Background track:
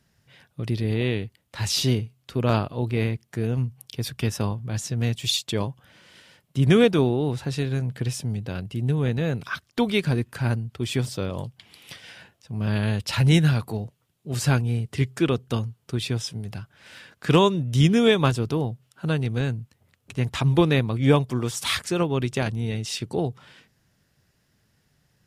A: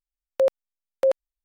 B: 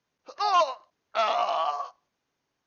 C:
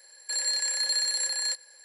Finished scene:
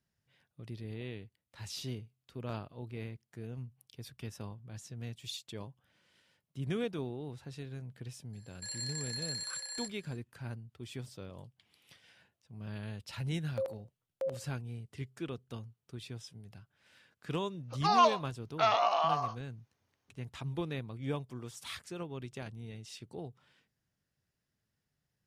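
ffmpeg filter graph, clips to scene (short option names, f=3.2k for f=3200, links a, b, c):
-filter_complex "[0:a]volume=-18dB[a];[1:a]asplit=2[b][c];[c]adelay=72,lowpass=f=1.2k:p=1,volume=-11dB,asplit=2[d][e];[e]adelay=72,lowpass=f=1.2k:p=1,volume=0.26,asplit=2[f][g];[g]adelay=72,lowpass=f=1.2k:p=1,volume=0.26[h];[b][d][f][h]amix=inputs=4:normalize=0[i];[3:a]atrim=end=1.84,asetpts=PTS-STARTPTS,volume=-12.5dB,afade=t=in:d=0.004:c=hsin,afade=t=out:st=1.836:d=0.004:c=hsin,adelay=8330[j];[i]atrim=end=1.44,asetpts=PTS-STARTPTS,volume=-15dB,afade=t=in:d=0.004:c=hsin,afade=t=out:st=1.436:d=0.004:c=hsin,adelay=13180[k];[2:a]atrim=end=2.66,asetpts=PTS-STARTPTS,volume=-2.5dB,afade=t=in:d=0.004:c=hsin,afade=t=out:st=2.656:d=0.004:c=hsin,adelay=17440[l];[a][j][k][l]amix=inputs=4:normalize=0"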